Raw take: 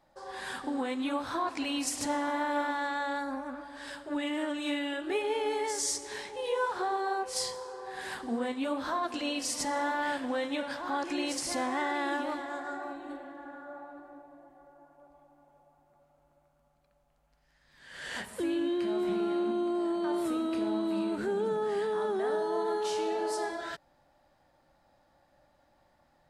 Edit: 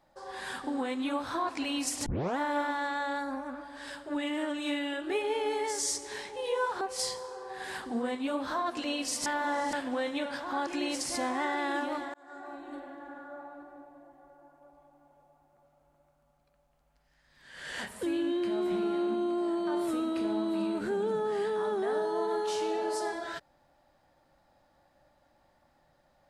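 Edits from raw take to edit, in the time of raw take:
2.06 s: tape start 0.32 s
6.81–7.18 s: delete
9.63–10.10 s: reverse
12.51–13.36 s: fade in equal-power

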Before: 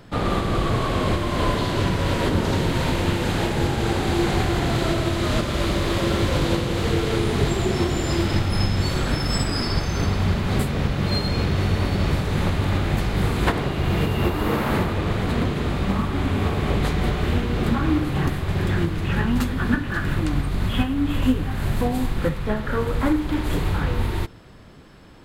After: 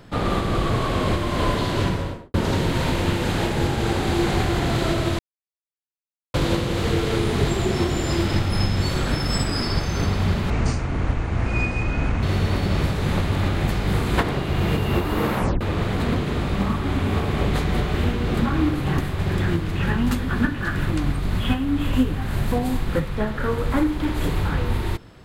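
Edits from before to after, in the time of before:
1.82–2.34 s: studio fade out
5.19–6.34 s: mute
10.50–11.52 s: speed 59%
14.65 s: tape stop 0.25 s

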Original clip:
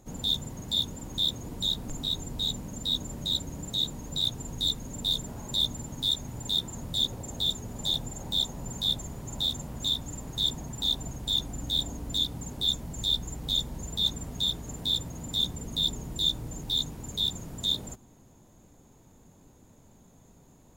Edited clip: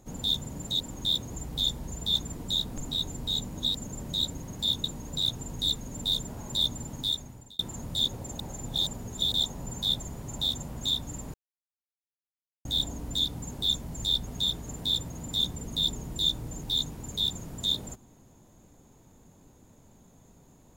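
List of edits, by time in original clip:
0.51–0.93 s: swap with 3.54–3.83 s
2.68–3.04 s: reverse
5.96–6.58 s: fade out
7.38–8.33 s: reverse
10.33–11.64 s: mute
13.26–14.27 s: move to 1.48 s

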